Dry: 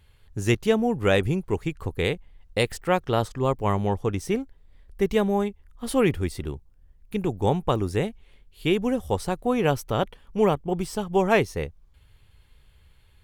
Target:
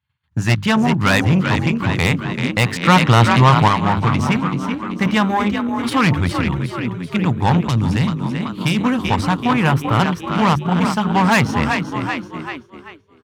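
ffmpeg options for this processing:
-filter_complex "[0:a]firequalizer=gain_entry='entry(170,0);entry(390,-20);entry(950,1);entry(9800,-16)':delay=0.05:min_phase=1,asplit=8[a][b][c][d][e][f][g][h];[b]adelay=385,afreqshift=43,volume=-8.5dB[i];[c]adelay=770,afreqshift=86,volume=-13.5dB[j];[d]adelay=1155,afreqshift=129,volume=-18.6dB[k];[e]adelay=1540,afreqshift=172,volume=-23.6dB[l];[f]adelay=1925,afreqshift=215,volume=-28.6dB[m];[g]adelay=2310,afreqshift=258,volume=-33.7dB[n];[h]adelay=2695,afreqshift=301,volume=-38.7dB[o];[a][i][j][k][l][m][n][o]amix=inputs=8:normalize=0,agate=range=-33dB:threshold=-39dB:ratio=3:detection=peak,bandreject=f=50:t=h:w=6,bandreject=f=100:t=h:w=6,bandreject=f=150:t=h:w=6,bandreject=f=200:t=h:w=6,aeval=exprs='(tanh(25.1*val(0)+0.55)-tanh(0.55))/25.1':c=same,asettb=1/sr,asplit=3[p][q][r];[p]atrim=end=2.834[s];[q]atrim=start=2.83:end=3.68,asetpts=PTS-STARTPTS,afade=t=in:d=0.004:c=qsin,afade=t=out:st=0.846:d=0.004:c=qsin,acontrast=36[t];[r]atrim=start=3.676[u];[s][t]acrossfade=d=0.004:c1=hsin:c2=qsin[v];[v][u]acrossfade=d=0.004:c1=qsin:c2=hsin,highpass=f=90:w=0.5412,highpass=f=90:w=1.3066,asettb=1/sr,asplit=3[w][x][y];[w]atrim=end=7.584[z];[x]atrim=start=7.58:end=8.81,asetpts=PTS-STARTPTS,afade=t=in:d=0.004:c=qsin,afade=t=out:st=1.226:d=0.004:c=qsin,acrossover=split=350|3000[aa][ab][ac];[ab]acompressor=threshold=-45dB:ratio=6[ad];[aa][ad][ac]amix=inputs=3:normalize=0[ae];[y]atrim=start=8.806[af];[z][ae]acrossfade=d=0.004:c1=hsin:c2=qsin[ag];[ag][af]acrossfade=d=0.004:c1=qsin:c2=hsin,asettb=1/sr,asplit=3[ah][ai][aj];[ah]atrim=end=9.534[ak];[ai]atrim=start=9.53:end=10,asetpts=PTS-STARTPTS,afade=t=in:d=0.004:c=qsin,afade=t=out:st=0.466:d=0.004:c=qsin,equalizer=f=5.2k:t=o:w=1.1:g=-9[al];[aj]atrim=start=9.996[am];[ak][al]acrossfade=d=0.004:c1=hsin:c2=qsin[an];[an][am]acrossfade=d=0.004:c1=qsin:c2=hsin,alimiter=level_in=19dB:limit=-1dB:release=50:level=0:latency=1,volume=-1dB"

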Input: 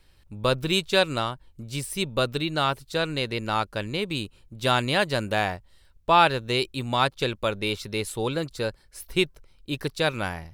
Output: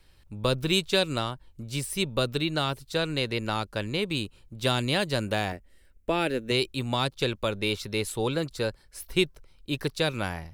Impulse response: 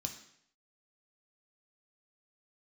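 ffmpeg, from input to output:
-filter_complex "[0:a]asettb=1/sr,asplit=3[a][b][c];[a]atrim=end=5.524[d];[b]atrim=start=5.52:end=6.51,asetpts=PTS-STARTPTS,afade=t=in:d=0.004:c=qsin,afade=t=out:st=0.986:d=0.004:c=qsin,equalizer=f=125:t=o:w=1:g=-11,equalizer=f=250:t=o:w=1:g=7,equalizer=f=500:t=o:w=1:g=3,equalizer=f=1k:t=o:w=1:g=-11,equalizer=f=2k:t=o:w=1:g=5,equalizer=f=4k:t=o:w=1:g=-10[e];[c]atrim=start=6.506[f];[d][e]acrossfade=d=0.004:c1=hsin:c2=qsin[g];[g][f]acrossfade=d=0.004:c1=qsin:c2=hsin,acrossover=split=470|3000[h][i][j];[i]acompressor=threshold=-28dB:ratio=6[k];[h][k][j]amix=inputs=3:normalize=0"

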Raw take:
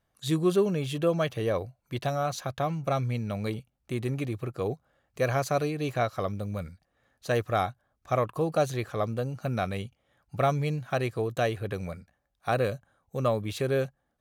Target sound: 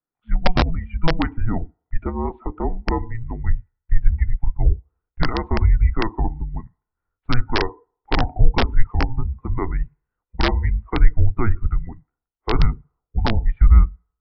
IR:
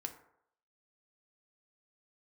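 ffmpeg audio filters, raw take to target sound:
-filter_complex "[0:a]highpass=f=210:t=q:w=0.5412,highpass=f=210:t=q:w=1.307,lowpass=f=2.5k:t=q:w=0.5176,lowpass=f=2.5k:t=q:w=0.7071,lowpass=f=2.5k:t=q:w=1.932,afreqshift=-350,asplit=2[a][b];[1:a]atrim=start_sample=2205[c];[b][c]afir=irnorm=-1:irlink=0,volume=-1.5dB[d];[a][d]amix=inputs=2:normalize=0,afftdn=nr=20:nf=-34,equalizer=f=120:w=1.2:g=-3,aresample=11025,aeval=exprs='(mod(4.47*val(0)+1,2)-1)/4.47':c=same,aresample=44100,asubboost=boost=10:cutoff=61,volume=2.5dB"

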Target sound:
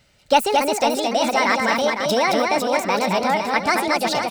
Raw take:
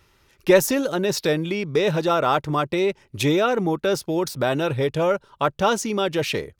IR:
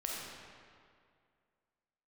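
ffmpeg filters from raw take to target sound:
-filter_complex "[0:a]equalizer=f=1.6k:t=o:w=0.33:g=4,equalizer=f=3.15k:t=o:w=0.33:g=3,equalizer=f=6.3k:t=o:w=0.33:g=-4,equalizer=f=10k:t=o:w=0.33:g=-7,asetrate=67473,aresample=44100,asplit=2[a][b];[b]aecho=0:1:220|506|877.8|1361|1989:0.631|0.398|0.251|0.158|0.1[c];[a][c]amix=inputs=2:normalize=0"

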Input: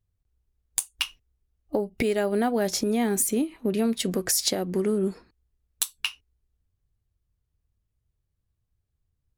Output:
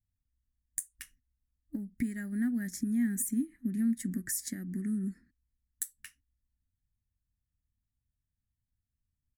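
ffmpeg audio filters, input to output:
-af "firequalizer=gain_entry='entry(150,0);entry(250,7);entry(430,-25);entry(980,-25);entry(1800,5);entry(2600,-21);entry(4100,-17);entry(7400,0)':delay=0.05:min_phase=1,volume=-8.5dB"

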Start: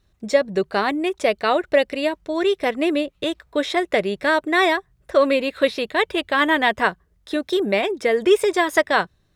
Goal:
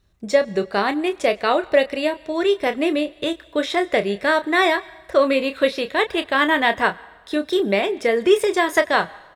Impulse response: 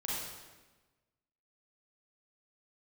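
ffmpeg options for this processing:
-filter_complex "[0:a]asplit=2[a][b];[b]adelay=30,volume=-10dB[c];[a][c]amix=inputs=2:normalize=0,asplit=2[d][e];[1:a]atrim=start_sample=2205,lowshelf=f=360:g=-11.5,adelay=101[f];[e][f]afir=irnorm=-1:irlink=0,volume=-24.5dB[g];[d][g]amix=inputs=2:normalize=0"

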